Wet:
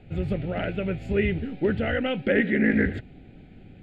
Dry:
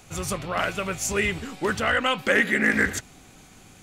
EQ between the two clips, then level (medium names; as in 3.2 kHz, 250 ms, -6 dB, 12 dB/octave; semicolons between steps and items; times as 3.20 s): distance through air 200 m; tilt shelf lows +6 dB, about 1.3 kHz; static phaser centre 2.6 kHz, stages 4; 0.0 dB